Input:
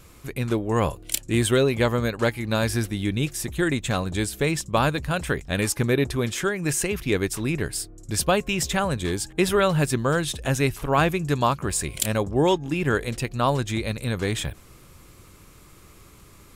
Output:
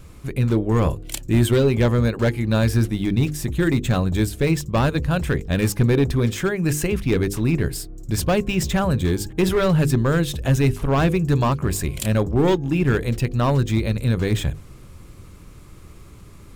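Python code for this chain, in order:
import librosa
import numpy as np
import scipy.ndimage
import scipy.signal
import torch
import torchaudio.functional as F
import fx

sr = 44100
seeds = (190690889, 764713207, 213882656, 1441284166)

y = np.clip(x, -10.0 ** (-17.0 / 20.0), 10.0 ** (-17.0 / 20.0))
y = fx.low_shelf(y, sr, hz=350.0, db=10.0)
y = fx.hum_notches(y, sr, base_hz=50, count=10)
y = np.interp(np.arange(len(y)), np.arange(len(y))[::2], y[::2])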